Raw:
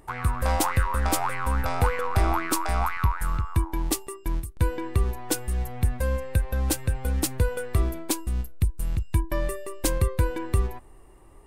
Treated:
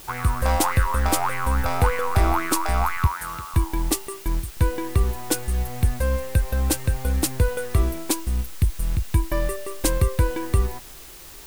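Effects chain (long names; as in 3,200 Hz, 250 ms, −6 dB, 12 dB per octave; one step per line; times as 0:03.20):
0:03.07–0:03.54: high-pass filter 420 Hz 6 dB per octave
in parallel at −7.5 dB: bit-depth reduction 6 bits, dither triangular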